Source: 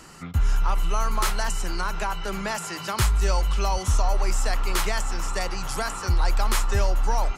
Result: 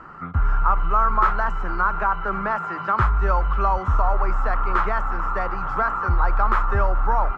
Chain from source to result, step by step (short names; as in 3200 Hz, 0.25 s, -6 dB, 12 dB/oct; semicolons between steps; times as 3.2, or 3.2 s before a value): synth low-pass 1300 Hz, resonance Q 3.6; gain +1 dB